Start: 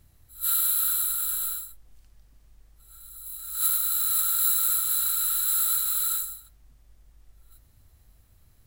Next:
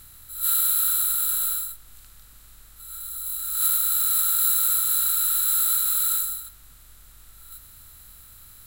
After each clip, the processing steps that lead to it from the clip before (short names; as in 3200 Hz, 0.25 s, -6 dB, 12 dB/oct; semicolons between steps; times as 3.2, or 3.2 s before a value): per-bin compression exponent 0.6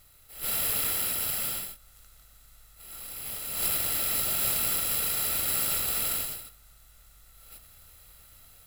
minimum comb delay 1.5 ms; AGC gain up to 4.5 dB; gain -9 dB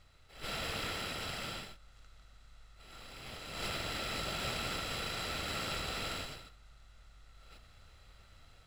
air absorption 130 m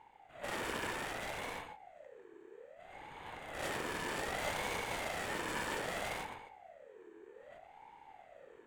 Wiener smoothing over 9 samples; ten-band EQ 500 Hz -7 dB, 1000 Hz +6 dB, 4000 Hz -10 dB, 8000 Hz +5 dB; ring modulator with a swept carrier 630 Hz, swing 40%, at 0.63 Hz; gain +4 dB